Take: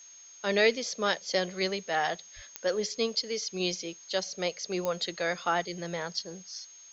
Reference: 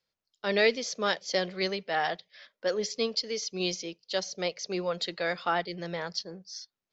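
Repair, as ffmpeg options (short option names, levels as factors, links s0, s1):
-filter_complex "[0:a]adeclick=t=4,bandreject=f=6500:w=30,asplit=3[s0][s1][s2];[s0]afade=t=out:st=2.35:d=0.02[s3];[s1]highpass=f=140:w=0.5412,highpass=f=140:w=1.3066,afade=t=in:st=2.35:d=0.02,afade=t=out:st=2.47:d=0.02[s4];[s2]afade=t=in:st=2.47:d=0.02[s5];[s3][s4][s5]amix=inputs=3:normalize=0,afftdn=nr=29:nf=-52"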